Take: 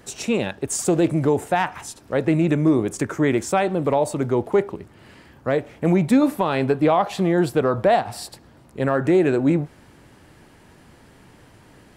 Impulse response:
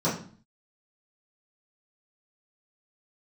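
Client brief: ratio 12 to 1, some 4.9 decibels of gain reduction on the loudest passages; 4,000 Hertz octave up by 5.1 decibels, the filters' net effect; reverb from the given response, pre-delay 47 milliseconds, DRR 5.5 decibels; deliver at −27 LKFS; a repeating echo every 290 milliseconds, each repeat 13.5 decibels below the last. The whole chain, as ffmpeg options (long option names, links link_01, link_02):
-filter_complex "[0:a]equalizer=frequency=4000:width_type=o:gain=6.5,acompressor=threshold=-17dB:ratio=12,aecho=1:1:290|580:0.211|0.0444,asplit=2[link_01][link_02];[1:a]atrim=start_sample=2205,adelay=47[link_03];[link_02][link_03]afir=irnorm=-1:irlink=0,volume=-18dB[link_04];[link_01][link_04]amix=inputs=2:normalize=0,volume=-6.5dB"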